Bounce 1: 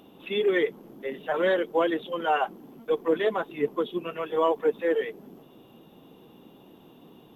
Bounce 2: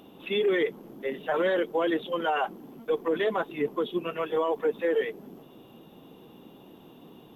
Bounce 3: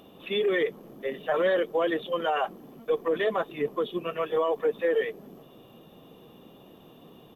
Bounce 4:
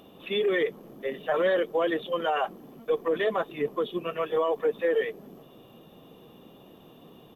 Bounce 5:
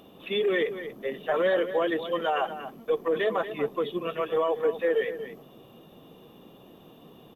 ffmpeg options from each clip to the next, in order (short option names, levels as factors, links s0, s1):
-af "alimiter=limit=0.106:level=0:latency=1:release=15,volume=1.19"
-af "aecho=1:1:1.7:0.31"
-af anull
-af "aecho=1:1:236:0.266"